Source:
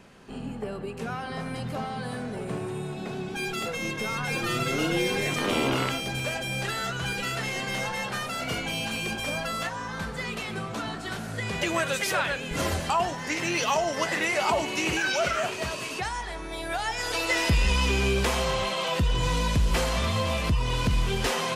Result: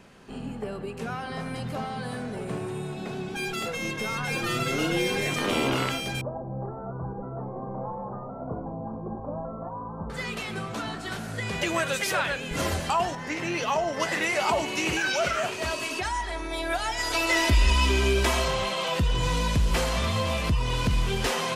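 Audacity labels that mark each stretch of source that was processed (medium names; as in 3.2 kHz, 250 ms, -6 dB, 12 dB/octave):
6.210000	10.100000	steep low-pass 1.1 kHz 48 dB/octave
13.150000	14.000000	treble shelf 3.1 kHz -9 dB
15.630000	18.480000	comb 3.1 ms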